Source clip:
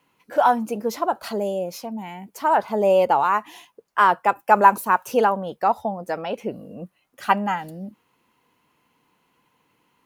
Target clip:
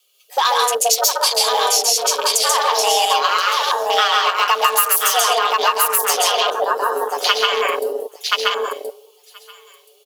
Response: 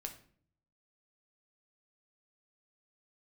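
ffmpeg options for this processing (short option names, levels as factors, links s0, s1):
-filter_complex "[0:a]aecho=1:1:5.9:0.43,aecho=1:1:1026|2052|3078:0.562|0.141|0.0351,aexciter=amount=12.3:drive=8:freq=2600,asplit=2[s0][s1];[1:a]atrim=start_sample=2205,adelay=136[s2];[s1][s2]afir=irnorm=-1:irlink=0,volume=1.5[s3];[s0][s3]amix=inputs=2:normalize=0,afreqshift=240,afwtdn=0.0891,equalizer=f=125:t=o:w=1:g=-4,equalizer=f=250:t=o:w=1:g=-6,equalizer=f=500:t=o:w=1:g=9,equalizer=f=2000:t=o:w=1:g=5,acompressor=threshold=0.178:ratio=5,volume=1.19"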